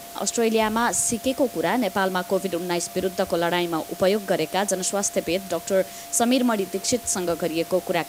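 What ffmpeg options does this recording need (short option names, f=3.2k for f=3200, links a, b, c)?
-af "bandreject=f=690:w=30,afwtdn=0.0089"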